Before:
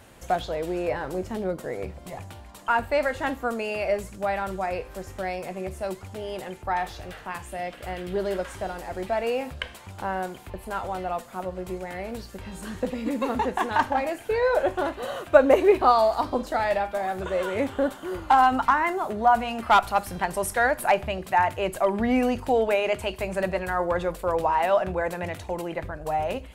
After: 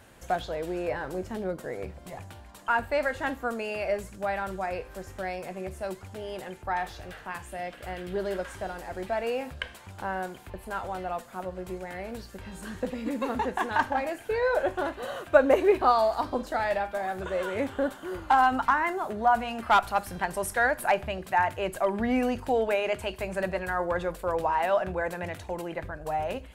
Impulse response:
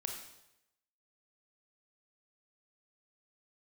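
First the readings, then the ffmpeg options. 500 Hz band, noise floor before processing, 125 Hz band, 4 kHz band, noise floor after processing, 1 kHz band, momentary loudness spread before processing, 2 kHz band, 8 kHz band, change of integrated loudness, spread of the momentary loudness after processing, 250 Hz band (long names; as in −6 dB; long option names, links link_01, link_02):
−3.5 dB, −44 dBFS, −3.5 dB, −3.5 dB, −48 dBFS, −3.5 dB, 14 LU, −1.0 dB, −3.5 dB, −3.5 dB, 14 LU, −3.5 dB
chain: -af "equalizer=frequency=1600:width=5.3:gain=4,volume=-3.5dB"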